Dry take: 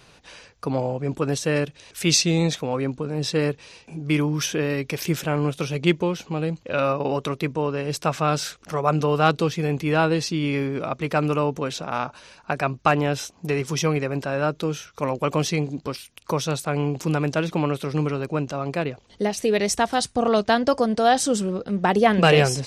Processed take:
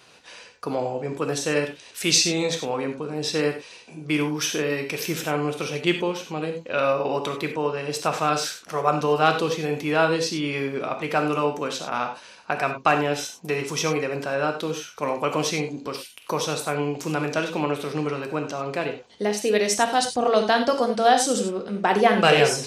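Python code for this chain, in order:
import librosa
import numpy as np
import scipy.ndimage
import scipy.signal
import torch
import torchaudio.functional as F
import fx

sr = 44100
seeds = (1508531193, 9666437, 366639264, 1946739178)

y = fx.highpass(x, sr, hz=330.0, slope=6)
y = fx.rev_gated(y, sr, seeds[0], gate_ms=120, shape='flat', drr_db=4.5)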